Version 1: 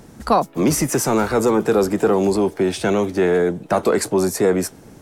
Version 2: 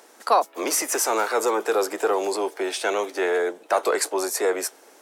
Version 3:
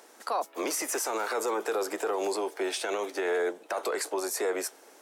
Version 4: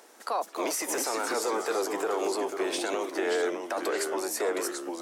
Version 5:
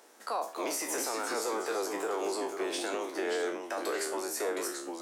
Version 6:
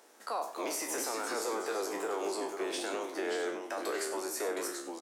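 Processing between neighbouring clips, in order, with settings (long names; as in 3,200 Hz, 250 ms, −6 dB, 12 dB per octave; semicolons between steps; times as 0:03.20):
Bessel high-pass filter 590 Hz, order 6
brickwall limiter −18.5 dBFS, peak gain reduction 11 dB; level −3 dB
delay with pitch and tempo change per echo 244 ms, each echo −2 semitones, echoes 2, each echo −6 dB
peak hold with a decay on every bin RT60 0.37 s; level −5 dB
single-tap delay 96 ms −12.5 dB; level −2 dB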